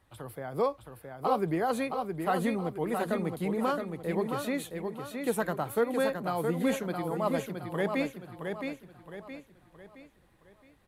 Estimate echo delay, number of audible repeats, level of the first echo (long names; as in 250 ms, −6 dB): 668 ms, 4, −5.5 dB